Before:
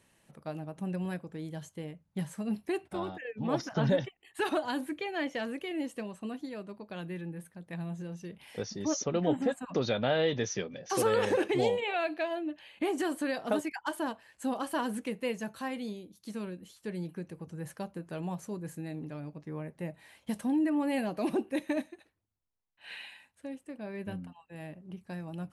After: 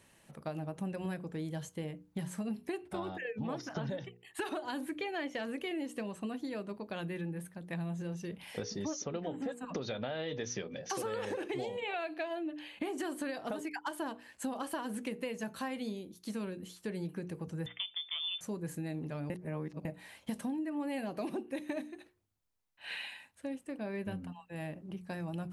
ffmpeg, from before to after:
-filter_complex "[0:a]asettb=1/sr,asplit=3[s0][s1][s2];[s0]atrim=end=17.664[s3];[s1]atrim=start=17.66:end=18.41,asetpts=PTS-STARTPTS,afade=t=in:d=0.004:c=qsin,afade=t=out:st=0.746:d=0.004:c=qsin,lowpass=f=3100:t=q:w=0.5098,lowpass=f=3100:t=q:w=0.6013,lowpass=f=3100:t=q:w=0.9,lowpass=f=3100:t=q:w=2.563,afreqshift=-3700[s4];[s2]atrim=start=18.406[s5];[s3][s4]acrossfade=d=0.004:c1=hsin:c2=qsin[s6];[s6][s5]acrossfade=d=0.004:c1=qsin:c2=hsin,asplit=3[s7][s8][s9];[s7]atrim=end=19.302[s10];[s8]atrim=start=19.298:end=19.852,asetpts=PTS-STARTPTS,areverse[s11];[s9]atrim=start=19.848[s12];[s10][s11]acrossfade=d=0.004:c1=hsin:c2=hsin[s13];[s13][s12]acrossfade=d=0.004:c1=hsin:c2=hsin,bandreject=f=60:t=h:w=6,bandreject=f=120:t=h:w=6,bandreject=f=180:t=h:w=6,bandreject=f=240:t=h:w=6,bandreject=f=300:t=h:w=6,bandreject=f=360:t=h:w=6,bandreject=f=420:t=h:w=6,bandreject=f=480:t=h:w=6,alimiter=limit=0.0668:level=0:latency=1:release=481,acompressor=threshold=0.0126:ratio=6,volume=1.5"

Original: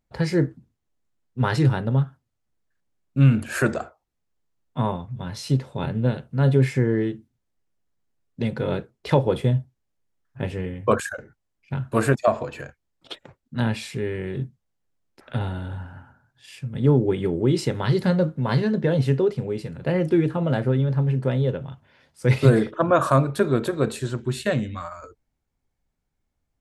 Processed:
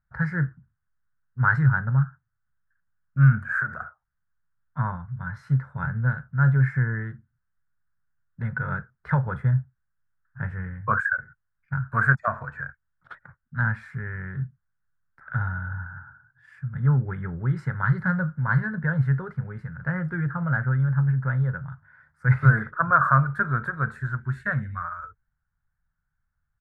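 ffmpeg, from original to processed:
-filter_complex "[0:a]asplit=3[s0][s1][s2];[s0]afade=t=out:st=3.38:d=0.02[s3];[s1]acompressor=threshold=0.0355:ratio=3:attack=3.2:release=140:knee=1:detection=peak,afade=t=in:st=3.38:d=0.02,afade=t=out:st=3.8:d=0.02[s4];[s2]afade=t=in:st=3.8:d=0.02[s5];[s3][s4][s5]amix=inputs=3:normalize=0,firequalizer=gain_entry='entry(150,0);entry(300,-22);entry(1500,12);entry(2700,-26)':delay=0.05:min_phase=1"

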